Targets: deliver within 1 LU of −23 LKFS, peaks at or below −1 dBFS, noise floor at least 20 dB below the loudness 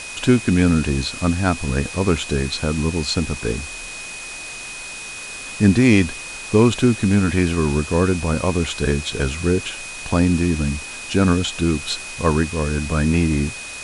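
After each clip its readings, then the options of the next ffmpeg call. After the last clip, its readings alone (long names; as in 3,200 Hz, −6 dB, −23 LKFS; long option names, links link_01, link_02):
interfering tone 2,500 Hz; level of the tone −33 dBFS; background noise floor −33 dBFS; target noise floor −40 dBFS; integrated loudness −20.0 LKFS; sample peak −2.0 dBFS; target loudness −23.0 LKFS
→ -af "bandreject=frequency=2500:width=30"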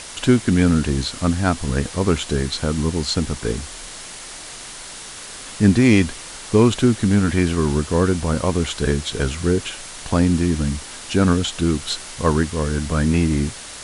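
interfering tone none found; background noise floor −36 dBFS; target noise floor −40 dBFS
→ -af "afftdn=noise_reduction=6:noise_floor=-36"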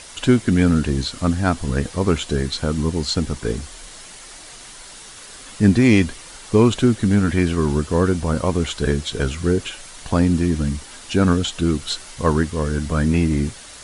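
background noise floor −40 dBFS; integrated loudness −20.0 LKFS; sample peak −2.0 dBFS; target loudness −23.0 LKFS
→ -af "volume=-3dB"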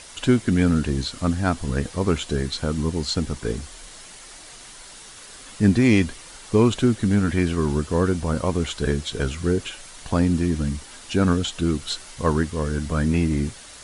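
integrated loudness −23.0 LKFS; sample peak −5.0 dBFS; background noise floor −43 dBFS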